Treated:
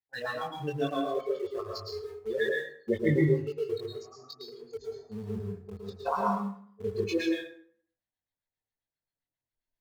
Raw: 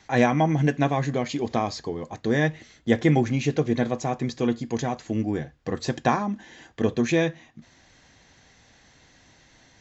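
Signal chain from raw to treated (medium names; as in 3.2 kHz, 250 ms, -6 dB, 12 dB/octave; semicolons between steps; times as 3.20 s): spectral noise reduction 30 dB; gate -53 dBFS, range -9 dB; LFO low-pass sine 7.5 Hz 480–4500 Hz; chorus voices 4, 0.62 Hz, delay 21 ms, depth 1.9 ms; in parallel at -10.5 dB: small samples zeroed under -34 dBFS; on the sum: plate-style reverb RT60 0.58 s, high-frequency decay 0.65×, pre-delay 100 ms, DRR -1 dB; trim -5 dB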